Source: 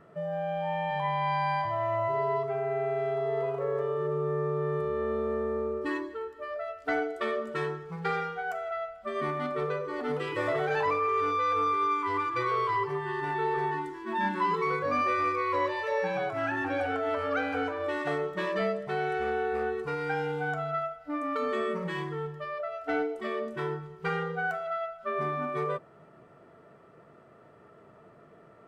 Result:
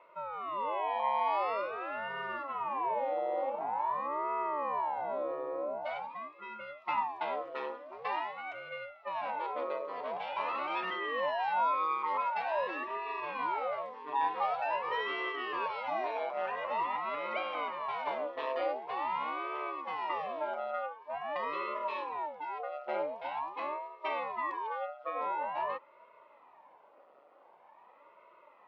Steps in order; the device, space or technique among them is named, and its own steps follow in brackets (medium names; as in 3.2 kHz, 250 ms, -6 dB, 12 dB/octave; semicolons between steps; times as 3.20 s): voice changer toy (ring modulator with a swept carrier 440 Hz, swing 85%, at 0.46 Hz; cabinet simulation 530–4500 Hz, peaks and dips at 570 Hz +8 dB, 950 Hz +9 dB, 1.6 kHz -9 dB, 2.6 kHz +3 dB); trim -3 dB